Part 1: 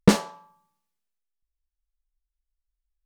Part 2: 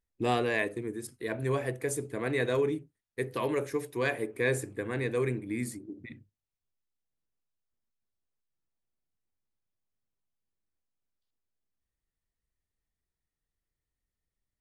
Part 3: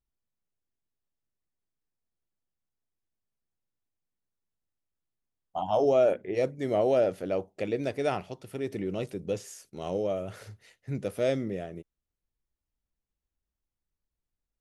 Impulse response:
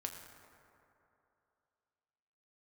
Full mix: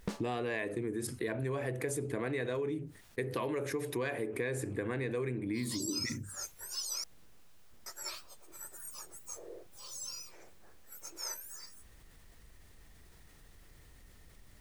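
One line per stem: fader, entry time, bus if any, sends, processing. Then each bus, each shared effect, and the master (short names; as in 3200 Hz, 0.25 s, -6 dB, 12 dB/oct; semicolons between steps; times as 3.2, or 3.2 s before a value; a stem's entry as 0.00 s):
-16.0 dB, 0.00 s, no send, sample leveller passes 1; auto duck -19 dB, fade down 0.40 s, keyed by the second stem
-0.5 dB, 0.00 s, no send, high shelf 4600 Hz -4.5 dB; fast leveller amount 50%
-7.5 dB, 0.00 s, muted 7.04–7.86, no send, spectrum mirrored in octaves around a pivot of 1800 Hz; steep high-pass 340 Hz 72 dB/oct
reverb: off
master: compressor 6:1, threshold -32 dBFS, peak gain reduction 9.5 dB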